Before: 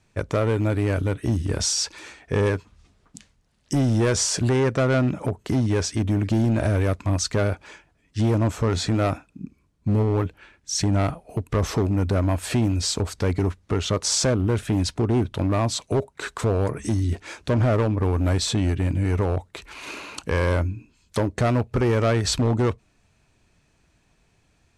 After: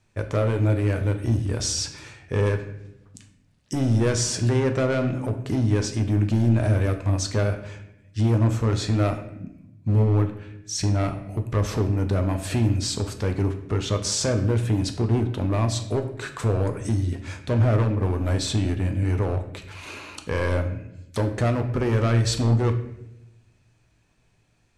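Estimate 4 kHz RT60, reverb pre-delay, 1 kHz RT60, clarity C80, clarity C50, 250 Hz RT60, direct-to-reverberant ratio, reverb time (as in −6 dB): 0.65 s, 8 ms, 0.75 s, 12.5 dB, 10.0 dB, 1.3 s, 5.0 dB, 0.85 s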